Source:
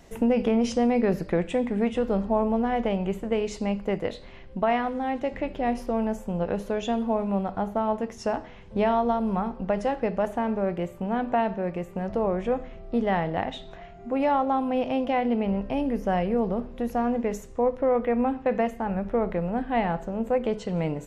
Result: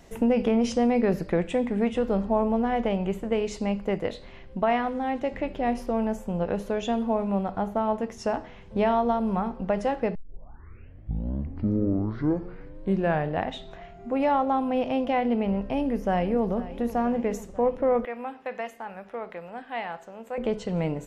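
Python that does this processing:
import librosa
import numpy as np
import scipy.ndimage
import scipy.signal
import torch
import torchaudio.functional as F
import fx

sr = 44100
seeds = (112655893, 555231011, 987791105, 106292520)

y = fx.echo_throw(x, sr, start_s=15.62, length_s=0.9, ms=490, feedback_pct=70, wet_db=-16.0)
y = fx.highpass(y, sr, hz=1500.0, slope=6, at=(18.05, 20.38))
y = fx.edit(y, sr, fx.tape_start(start_s=10.15, length_s=3.36), tone=tone)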